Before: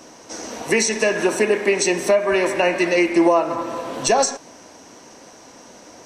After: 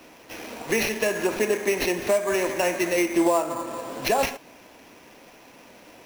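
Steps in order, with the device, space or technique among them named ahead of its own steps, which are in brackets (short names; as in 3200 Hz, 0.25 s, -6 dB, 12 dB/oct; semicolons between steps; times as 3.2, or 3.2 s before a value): early companding sampler (sample-rate reducer 8300 Hz, jitter 0%; companded quantiser 6-bit); gain -5.5 dB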